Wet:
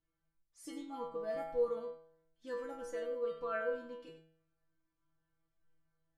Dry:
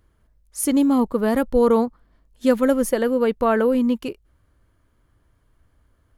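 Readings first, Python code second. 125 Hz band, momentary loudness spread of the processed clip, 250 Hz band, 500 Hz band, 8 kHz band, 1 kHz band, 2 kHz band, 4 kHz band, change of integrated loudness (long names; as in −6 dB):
can't be measured, 17 LU, −31.0 dB, −17.5 dB, below −25 dB, −19.0 dB, −15.0 dB, −20.5 dB, −19.5 dB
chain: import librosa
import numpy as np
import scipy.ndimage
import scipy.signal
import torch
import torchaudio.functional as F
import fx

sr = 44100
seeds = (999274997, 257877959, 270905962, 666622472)

p1 = scipy.signal.sosfilt(scipy.signal.butter(2, 5900.0, 'lowpass', fs=sr, output='sos'), x)
p2 = fx.stiff_resonator(p1, sr, f0_hz=160.0, decay_s=0.73, stiffness=0.002)
p3 = p2 + fx.echo_single(p2, sr, ms=94, db=-12.0, dry=0)
y = p3 * 10.0 ** (-3.5 / 20.0)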